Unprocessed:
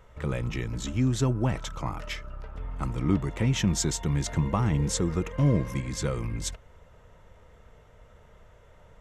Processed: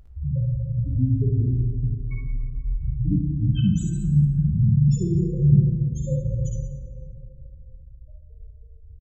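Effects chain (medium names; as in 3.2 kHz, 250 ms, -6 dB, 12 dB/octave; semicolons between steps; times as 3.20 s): in parallel at -1.5 dB: compression, threshold -37 dBFS, peak gain reduction 17.5 dB; on the sum: one-sided clip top -27.5 dBFS; loudest bins only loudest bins 2; harmony voices -12 st -17 dB; on a send: early reflections 56 ms -5 dB, 74 ms -8.5 dB; on the sum: plate-style reverb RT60 2.9 s, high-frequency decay 0.3×, DRR 1.5 dB; trim +6 dB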